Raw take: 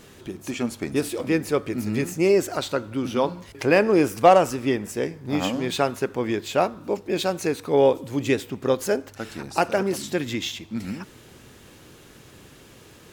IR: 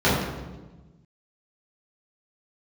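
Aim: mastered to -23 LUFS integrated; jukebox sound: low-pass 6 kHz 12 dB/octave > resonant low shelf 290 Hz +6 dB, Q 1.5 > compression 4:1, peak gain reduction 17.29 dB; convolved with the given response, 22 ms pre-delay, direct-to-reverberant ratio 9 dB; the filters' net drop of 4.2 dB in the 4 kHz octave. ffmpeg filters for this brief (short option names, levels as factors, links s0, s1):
-filter_complex "[0:a]equalizer=f=4000:t=o:g=-4.5,asplit=2[s0][s1];[1:a]atrim=start_sample=2205,adelay=22[s2];[s1][s2]afir=irnorm=-1:irlink=0,volume=0.0335[s3];[s0][s3]amix=inputs=2:normalize=0,lowpass=6000,lowshelf=f=290:t=q:w=1.5:g=6,acompressor=threshold=0.0316:ratio=4,volume=2.99"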